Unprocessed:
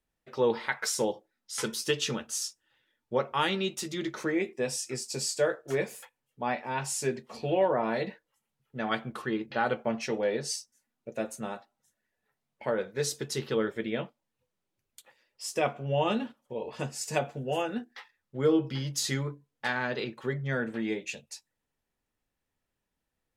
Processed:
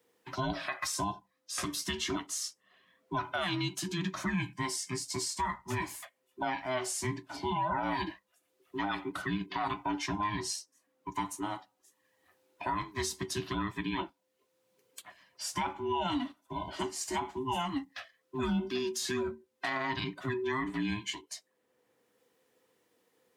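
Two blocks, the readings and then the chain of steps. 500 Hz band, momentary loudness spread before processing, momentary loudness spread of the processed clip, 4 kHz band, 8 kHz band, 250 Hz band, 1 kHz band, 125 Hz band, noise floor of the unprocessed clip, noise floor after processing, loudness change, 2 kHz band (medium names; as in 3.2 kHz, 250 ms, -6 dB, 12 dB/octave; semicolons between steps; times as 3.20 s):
-9.0 dB, 11 LU, 8 LU, -1.5 dB, -2.5 dB, -2.0 dB, +0.5 dB, -3.0 dB, -84 dBFS, -77 dBFS, -3.5 dB, -3.0 dB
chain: every band turned upside down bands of 500 Hz; high-pass 140 Hz 12 dB/octave; peak limiter -23 dBFS, peak gain reduction 8 dB; three bands compressed up and down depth 40%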